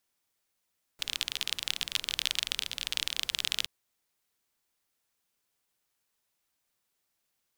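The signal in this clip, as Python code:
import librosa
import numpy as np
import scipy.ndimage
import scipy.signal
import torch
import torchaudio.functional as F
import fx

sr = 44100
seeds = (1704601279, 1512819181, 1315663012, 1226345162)

y = fx.rain(sr, seeds[0], length_s=2.67, drops_per_s=30.0, hz=3300.0, bed_db=-19.0)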